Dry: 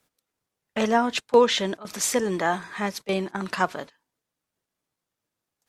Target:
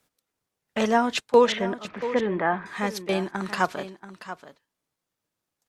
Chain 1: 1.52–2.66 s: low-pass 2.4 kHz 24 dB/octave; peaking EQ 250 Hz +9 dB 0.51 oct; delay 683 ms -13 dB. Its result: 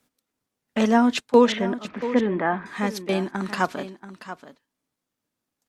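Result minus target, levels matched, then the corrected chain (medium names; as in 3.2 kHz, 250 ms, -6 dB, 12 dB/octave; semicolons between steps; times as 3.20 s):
250 Hz band +4.5 dB
1.52–2.66 s: low-pass 2.4 kHz 24 dB/octave; delay 683 ms -13 dB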